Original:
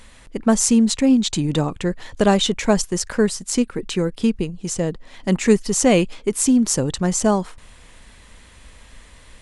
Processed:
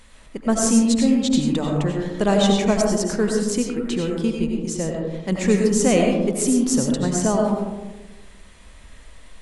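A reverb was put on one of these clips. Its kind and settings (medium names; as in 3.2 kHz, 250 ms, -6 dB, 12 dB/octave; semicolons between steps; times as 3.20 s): algorithmic reverb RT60 1.2 s, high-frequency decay 0.25×, pre-delay 55 ms, DRR 0 dB; trim -4.5 dB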